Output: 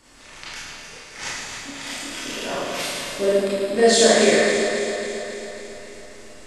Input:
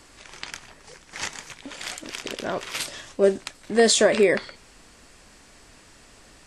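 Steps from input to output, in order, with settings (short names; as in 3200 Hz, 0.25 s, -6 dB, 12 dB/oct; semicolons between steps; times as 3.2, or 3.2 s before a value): regenerating reverse delay 0.137 s, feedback 79%, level -8 dB; 3.26–3.76 bell 6100 Hz -15 dB 0.22 oct; split-band echo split 1100 Hz, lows 0.176 s, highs 0.108 s, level -6.5 dB; Schroeder reverb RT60 0.71 s, combs from 25 ms, DRR -7 dB; gain -6 dB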